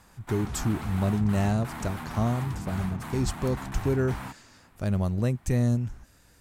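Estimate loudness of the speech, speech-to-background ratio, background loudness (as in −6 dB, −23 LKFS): −28.5 LKFS, 9.0 dB, −37.5 LKFS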